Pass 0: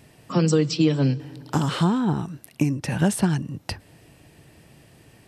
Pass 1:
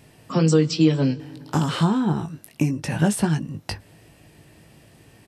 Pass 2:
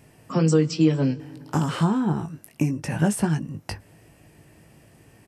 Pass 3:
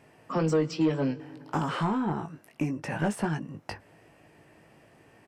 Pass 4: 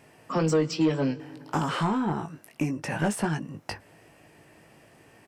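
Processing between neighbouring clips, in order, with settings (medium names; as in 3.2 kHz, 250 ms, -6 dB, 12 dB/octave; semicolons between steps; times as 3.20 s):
doubling 19 ms -7.5 dB
peaking EQ 3.8 kHz -7.5 dB 0.64 oct; trim -1.5 dB
overdrive pedal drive 17 dB, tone 1.4 kHz, clips at -7 dBFS; trim -7.5 dB
treble shelf 3.7 kHz +6.5 dB; trim +1.5 dB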